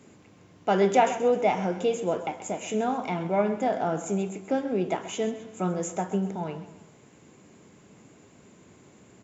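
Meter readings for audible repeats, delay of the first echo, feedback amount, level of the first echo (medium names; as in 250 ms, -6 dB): 3, 131 ms, 43%, -13.5 dB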